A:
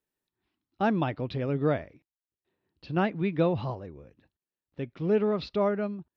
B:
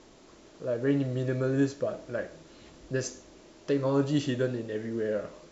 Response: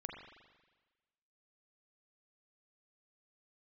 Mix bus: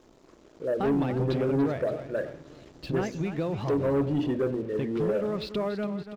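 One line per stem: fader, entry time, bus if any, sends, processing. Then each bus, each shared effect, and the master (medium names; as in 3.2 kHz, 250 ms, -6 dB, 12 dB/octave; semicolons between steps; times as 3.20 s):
-0.5 dB, 0.00 s, no send, echo send -11.5 dB, compression 6:1, threshold -34 dBFS, peak gain reduction 13.5 dB
-5.0 dB, 0.00 s, send -12.5 dB, no echo send, resonances exaggerated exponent 1.5; low-pass that closes with the level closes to 2.6 kHz, closed at -27 dBFS; hum notches 60/120/180/240/300 Hz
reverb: on, RT60 1.3 s, pre-delay 39 ms
echo: feedback delay 285 ms, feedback 52%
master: waveshaping leveller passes 2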